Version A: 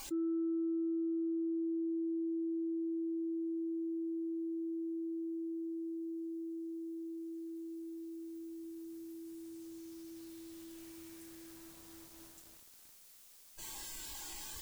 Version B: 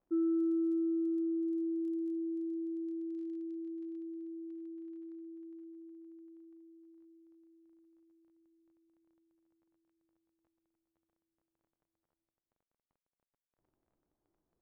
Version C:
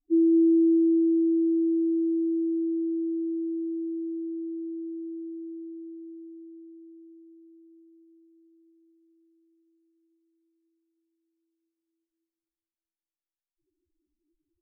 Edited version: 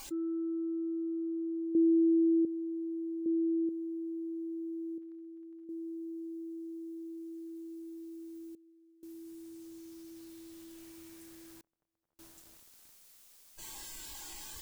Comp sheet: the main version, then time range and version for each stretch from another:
A
0:01.75–0:02.45: punch in from C
0:03.26–0:03.69: punch in from C
0:04.98–0:05.69: punch in from B
0:08.55–0:09.03: punch in from C
0:11.61–0:12.19: punch in from B

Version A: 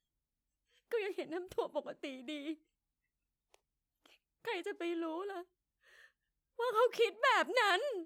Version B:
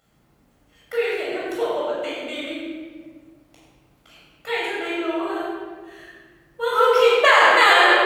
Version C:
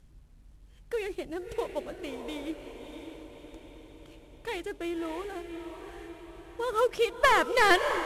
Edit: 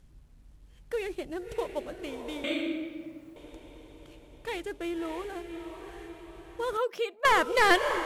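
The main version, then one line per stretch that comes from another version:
C
0:02.44–0:03.36: punch in from B
0:06.77–0:07.25: punch in from A

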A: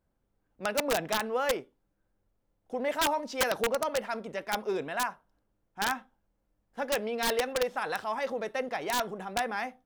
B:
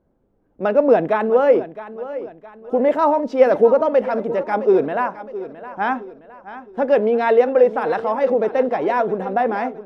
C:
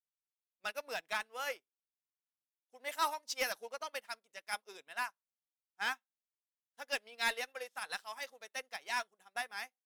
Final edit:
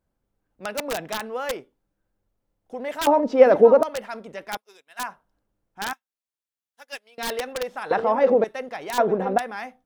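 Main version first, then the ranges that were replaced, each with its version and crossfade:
A
0:03.07–0:03.83: punch in from B
0:04.57–0:04.99: punch in from C
0:05.93–0:07.18: punch in from C
0:07.91–0:08.44: punch in from B
0:08.98–0:09.38: punch in from B

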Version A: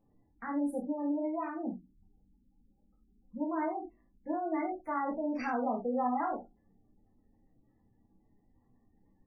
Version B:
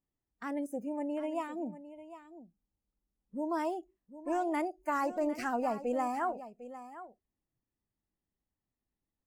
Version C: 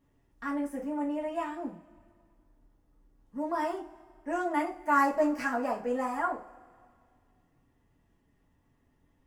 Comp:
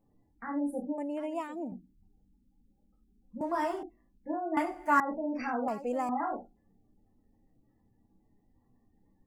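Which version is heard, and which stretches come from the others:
A
0:00.98–0:01.72: punch in from B
0:03.41–0:03.83: punch in from C
0:04.57–0:05.00: punch in from C
0:05.68–0:06.09: punch in from B

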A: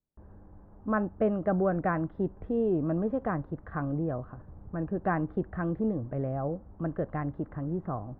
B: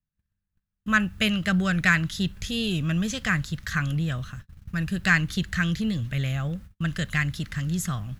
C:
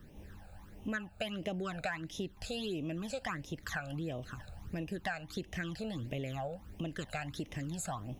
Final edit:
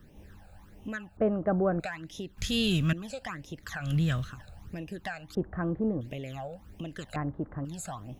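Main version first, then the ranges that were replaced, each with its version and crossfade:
C
0:01.17–0:01.80: punch in from A
0:02.38–0:02.93: punch in from B
0:03.87–0:04.28: punch in from B, crossfade 0.16 s
0:05.35–0:06.01: punch in from A
0:07.16–0:07.65: punch in from A

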